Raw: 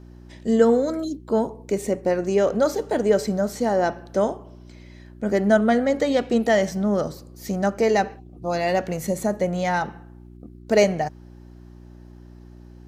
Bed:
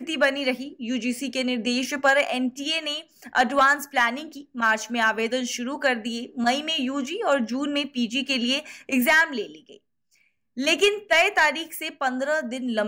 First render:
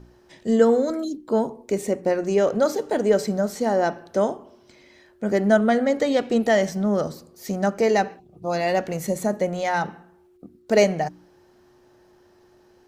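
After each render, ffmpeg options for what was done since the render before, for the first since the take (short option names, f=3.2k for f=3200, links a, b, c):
-af "bandreject=f=60:t=h:w=4,bandreject=f=120:t=h:w=4,bandreject=f=180:t=h:w=4,bandreject=f=240:t=h:w=4,bandreject=f=300:t=h:w=4"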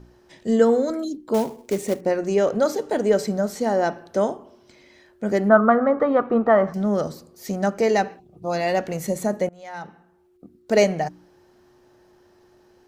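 -filter_complex "[0:a]asettb=1/sr,asplit=3[a][b][c];[a]atrim=end=1.344[d];[b]atrim=start=1.34:end=2.01,asetpts=PTS-STARTPTS,afade=t=in:d=0.004:c=qsin,afade=t=out:st=0.666:d=0.004:c=qsin,acrusher=bits=4:mode=log:mix=0:aa=0.000001[e];[c]atrim=start=2.006[f];[d][e]acrossfade=d=0.004:c1=hsin:c2=qsin[g];[g][f]acrossfade=d=0.004:c1=qsin:c2=hsin,asettb=1/sr,asplit=3[h][i][j];[h]atrim=end=5.494[k];[i]atrim=start=5.49:end=6.74,asetpts=PTS-STARTPTS,afade=t=in:d=0.004:c=qsin,afade=t=out:st=1.246:d=0.004:c=qsin,lowpass=f=1.2k:t=q:w=7.8[l];[j]atrim=start=6.736[m];[k][l]acrossfade=d=0.004:c1=hsin:c2=qsin[n];[n][m]acrossfade=d=0.004:c1=qsin:c2=hsin,asplit=2[o][p];[o]atrim=end=9.49,asetpts=PTS-STARTPTS,afade=t=out:st=9.486:d=0.004:c=hsin:silence=0.0668344[q];[p]atrim=start=9.49,asetpts=PTS-STARTPTS,afade=t=in:d=1.28:silence=0.0668344[r];[q][r]concat=n=2:v=0:a=1"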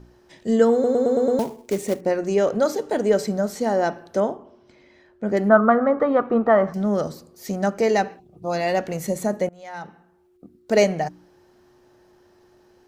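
-filter_complex "[0:a]asettb=1/sr,asplit=3[a][b][c];[a]atrim=end=4.204[d];[b]atrim=start=4.2:end=5.37,asetpts=PTS-STARTPTS,afade=t=in:d=0.004:c=qsin,afade=t=out:st=1.166:d=0.004:c=qsin,lowpass=f=2.2k:p=1[e];[c]atrim=start=5.366[f];[d][e]acrossfade=d=0.004:c1=hsin:c2=qsin[g];[g][f]acrossfade=d=0.004:c1=qsin:c2=hsin,asplit=7[h][i][j][k][l][m][n];[h]atrim=end=0.842[o];[i]atrim=start=0.728:end=0.842[p];[j]atrim=start=0.728:end=0.842[q];[k]atrim=start=0.728:end=0.842[r];[l]atrim=start=0.728:end=0.842[s];[m]atrim=start=0.728:end=0.842[t];[n]atrim=start=1.388[u];[o][p]acrossfade=d=0.004:c1=hsin:c2=hsin[v];[v][q]acrossfade=d=0.004:c1=hsin:c2=hsin[w];[w][r]acrossfade=d=0.004:c1=hsin:c2=hsin[x];[x][s]acrossfade=d=0.004:c1=hsin:c2=hsin[y];[y][t]acrossfade=d=0.004:c1=hsin:c2=hsin[z];[z][u]acrossfade=d=0.004:c1=hsin:c2=hsin"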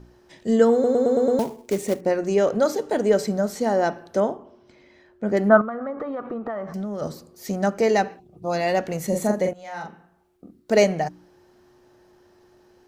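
-filter_complex "[0:a]asettb=1/sr,asplit=3[a][b][c];[a]atrim=end=5.614[d];[b]atrim=start=5.61:end=7.02,asetpts=PTS-STARTPTS,afade=t=in:d=0.004:c=qsin,afade=t=out:st=1.406:d=0.004:c=qsin,acompressor=threshold=-26dB:ratio=12:attack=3.2:release=140:knee=1:detection=peak[e];[c]atrim=start=7.016[f];[d][e]acrossfade=d=0.004:c1=hsin:c2=qsin[g];[g][f]acrossfade=d=0.004:c1=qsin:c2=hsin,asettb=1/sr,asplit=3[h][i][j];[h]atrim=end=9.084[k];[i]atrim=start=9.08:end=10.72,asetpts=PTS-STARTPTS,afade=t=in:d=0.004:c=qsin,afade=t=out:st=1.636:d=0.004:c=qsin,asplit=2[l][m];[m]adelay=43,volume=-4dB[n];[l][n]amix=inputs=2:normalize=0,atrim=end_sample=72324[o];[j]atrim=start=10.716[p];[k][o]acrossfade=d=0.004:c1=hsin:c2=qsin[q];[q][p]acrossfade=d=0.004:c1=qsin:c2=hsin"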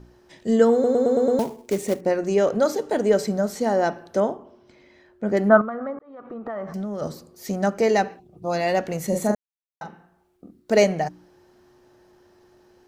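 -filter_complex "[0:a]asplit=4[a][b][c][d];[a]atrim=end=5.99,asetpts=PTS-STARTPTS,afade=t=out:st=5.986:d=0.004:c=hsin[e];[b]atrim=start=5.99:end=9.35,asetpts=PTS-STARTPTS,afade=t=in:d=0.63,afade=t=out:st=3.356:d=0.004:c=hsin[f];[c]atrim=start=9.35:end=9.81,asetpts=PTS-STARTPTS,volume=0[g];[d]atrim=start=9.81,asetpts=PTS-STARTPTS,afade=t=in:d=0.004:c=hsin[h];[e][f][g][h]concat=n=4:v=0:a=1"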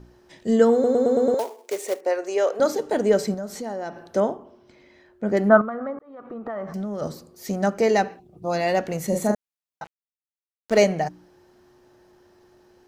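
-filter_complex "[0:a]asettb=1/sr,asplit=3[a][b][c];[a]atrim=end=1.344[d];[b]atrim=start=1.34:end=2.6,asetpts=PTS-STARTPTS,afade=t=in:d=0.004:c=qsin,afade=t=out:st=1.256:d=0.004:c=qsin,highpass=f=420:w=0.5412,highpass=f=420:w=1.3066[e];[c]atrim=start=2.596[f];[d][e]acrossfade=d=0.004:c1=hsin:c2=qsin[g];[g][f]acrossfade=d=0.004:c1=qsin:c2=hsin,asettb=1/sr,asplit=3[h][i][j];[h]atrim=end=3.344[k];[i]atrim=start=3.34:end=4.07,asetpts=PTS-STARTPTS,afade=t=in:d=0.004:c=qsin,afade=t=out:st=0.726:d=0.004:c=qsin,acompressor=threshold=-32dB:ratio=2.5:attack=3.2:release=140:knee=1:detection=peak[l];[j]atrim=start=4.066[m];[k][l]acrossfade=d=0.004:c1=hsin:c2=qsin[n];[n][m]acrossfade=d=0.004:c1=qsin:c2=hsin,asettb=1/sr,asplit=3[o][p][q];[o]atrim=end=9.844[r];[p]atrim=start=9.84:end=10.78,asetpts=PTS-STARTPTS,afade=t=in:d=0.004:c=qsin,afade=t=out:st=0.936:d=0.004:c=qsin,aeval=exprs='sgn(val(0))*max(abs(val(0))-0.0237,0)':c=same[s];[q]atrim=start=10.776[t];[r][s]acrossfade=d=0.004:c1=hsin:c2=qsin[u];[u][t]acrossfade=d=0.004:c1=qsin:c2=hsin"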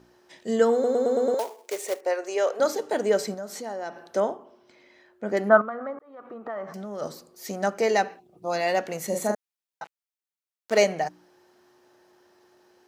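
-af "highpass=f=500:p=1"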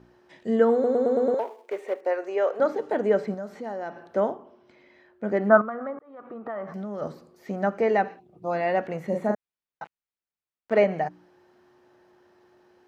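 -filter_complex "[0:a]acrossover=split=2700[a][b];[b]acompressor=threshold=-52dB:ratio=4:attack=1:release=60[c];[a][c]amix=inputs=2:normalize=0,bass=f=250:g=5,treble=f=4k:g=-11"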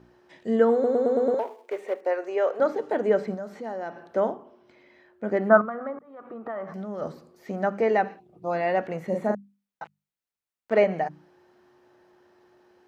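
-af "bandreject=f=50:t=h:w=6,bandreject=f=100:t=h:w=6,bandreject=f=150:t=h:w=6,bandreject=f=200:t=h:w=6,bandreject=f=250:t=h:w=6"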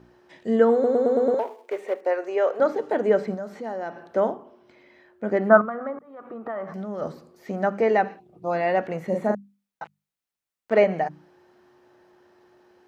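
-af "volume=2dB"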